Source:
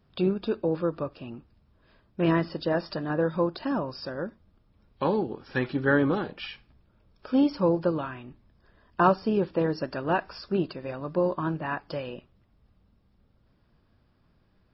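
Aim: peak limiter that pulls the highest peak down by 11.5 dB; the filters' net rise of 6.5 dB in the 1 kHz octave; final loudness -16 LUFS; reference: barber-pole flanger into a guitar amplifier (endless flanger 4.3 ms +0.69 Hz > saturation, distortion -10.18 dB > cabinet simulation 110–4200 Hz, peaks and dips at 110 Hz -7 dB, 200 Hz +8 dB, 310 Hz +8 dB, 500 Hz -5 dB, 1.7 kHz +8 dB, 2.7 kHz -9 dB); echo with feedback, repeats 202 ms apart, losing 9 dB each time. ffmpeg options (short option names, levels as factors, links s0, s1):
-filter_complex "[0:a]equalizer=f=1000:t=o:g=7.5,alimiter=limit=0.15:level=0:latency=1,aecho=1:1:202|404|606|808:0.355|0.124|0.0435|0.0152,asplit=2[s0][s1];[s1]adelay=4.3,afreqshift=0.69[s2];[s0][s2]amix=inputs=2:normalize=1,asoftclip=threshold=0.0447,highpass=110,equalizer=f=110:t=q:w=4:g=-7,equalizer=f=200:t=q:w=4:g=8,equalizer=f=310:t=q:w=4:g=8,equalizer=f=500:t=q:w=4:g=-5,equalizer=f=1700:t=q:w=4:g=8,equalizer=f=2700:t=q:w=4:g=-9,lowpass=f=4200:w=0.5412,lowpass=f=4200:w=1.3066,volume=5.96"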